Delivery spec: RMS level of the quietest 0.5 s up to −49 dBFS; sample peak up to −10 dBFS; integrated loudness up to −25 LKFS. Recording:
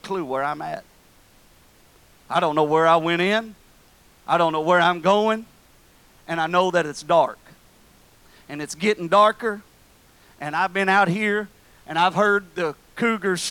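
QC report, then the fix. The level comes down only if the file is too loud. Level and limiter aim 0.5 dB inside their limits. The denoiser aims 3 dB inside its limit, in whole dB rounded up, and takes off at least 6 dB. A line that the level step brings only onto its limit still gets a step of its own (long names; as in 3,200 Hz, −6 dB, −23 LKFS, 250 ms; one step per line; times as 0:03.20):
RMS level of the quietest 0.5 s −54 dBFS: in spec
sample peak −5.5 dBFS: out of spec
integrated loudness −21.0 LKFS: out of spec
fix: level −4.5 dB
brickwall limiter −10.5 dBFS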